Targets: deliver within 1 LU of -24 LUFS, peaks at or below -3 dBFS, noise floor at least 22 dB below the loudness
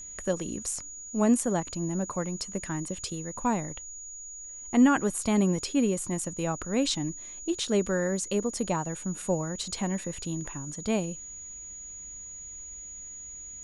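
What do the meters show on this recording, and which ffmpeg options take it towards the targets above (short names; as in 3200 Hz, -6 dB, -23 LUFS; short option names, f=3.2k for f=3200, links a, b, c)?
steady tone 6800 Hz; tone level -40 dBFS; loudness -30.0 LUFS; peak -11.5 dBFS; loudness target -24.0 LUFS
-> -af "bandreject=f=6.8k:w=30"
-af "volume=6dB"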